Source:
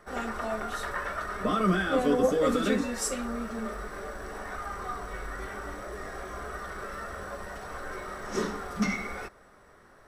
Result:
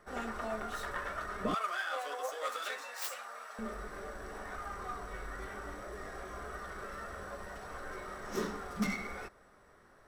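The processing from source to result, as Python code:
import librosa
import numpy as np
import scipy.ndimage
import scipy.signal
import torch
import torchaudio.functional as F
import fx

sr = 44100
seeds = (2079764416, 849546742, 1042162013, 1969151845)

y = fx.tracing_dist(x, sr, depth_ms=0.16)
y = fx.highpass(y, sr, hz=680.0, slope=24, at=(1.54, 3.59))
y = y * 10.0 ** (-5.5 / 20.0)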